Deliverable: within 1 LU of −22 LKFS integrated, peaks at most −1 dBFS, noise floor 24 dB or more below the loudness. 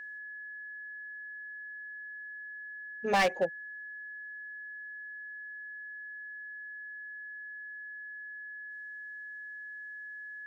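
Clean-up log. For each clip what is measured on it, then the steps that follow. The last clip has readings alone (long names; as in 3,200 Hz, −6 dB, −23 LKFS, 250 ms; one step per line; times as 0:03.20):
share of clipped samples 0.4%; peaks flattened at −21.5 dBFS; interfering tone 1,700 Hz; level of the tone −41 dBFS; integrated loudness −38.5 LKFS; sample peak −21.5 dBFS; target loudness −22.0 LKFS
→ clipped peaks rebuilt −21.5 dBFS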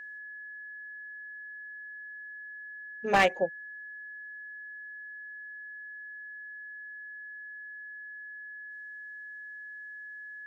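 share of clipped samples 0.0%; interfering tone 1,700 Hz; level of the tone −41 dBFS
→ notch filter 1,700 Hz, Q 30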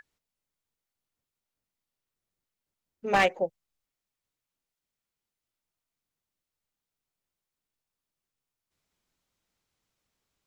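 interfering tone none found; integrated loudness −26.5 LKFS; sample peak −12.0 dBFS; target loudness −22.0 LKFS
→ level +4.5 dB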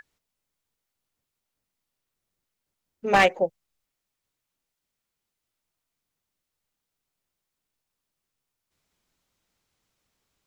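integrated loudness −22.0 LKFS; sample peak −7.5 dBFS; background noise floor −84 dBFS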